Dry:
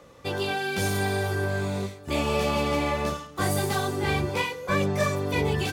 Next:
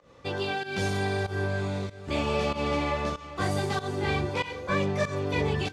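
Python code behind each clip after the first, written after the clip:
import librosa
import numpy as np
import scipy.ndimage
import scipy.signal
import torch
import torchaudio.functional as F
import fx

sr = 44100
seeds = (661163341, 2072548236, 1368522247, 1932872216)

y = scipy.signal.sosfilt(scipy.signal.butter(2, 6000.0, 'lowpass', fs=sr, output='sos'), x)
y = fx.echo_feedback(y, sr, ms=397, feedback_pct=44, wet_db=-15.5)
y = fx.volume_shaper(y, sr, bpm=95, per_beat=1, depth_db=-15, release_ms=163.0, shape='fast start')
y = F.gain(torch.from_numpy(y), -2.0).numpy()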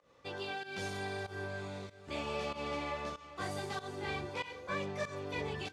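y = fx.low_shelf(x, sr, hz=290.0, db=-7.5)
y = F.gain(torch.from_numpy(y), -8.5).numpy()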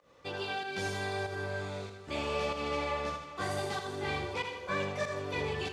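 y = fx.echo_feedback(x, sr, ms=80, feedback_pct=45, wet_db=-7.0)
y = F.gain(torch.from_numpy(y), 3.5).numpy()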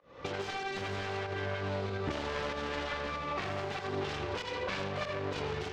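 y = fx.self_delay(x, sr, depth_ms=0.59)
y = fx.recorder_agc(y, sr, target_db=-25.5, rise_db_per_s=64.0, max_gain_db=30)
y = fx.air_absorb(y, sr, metres=170.0)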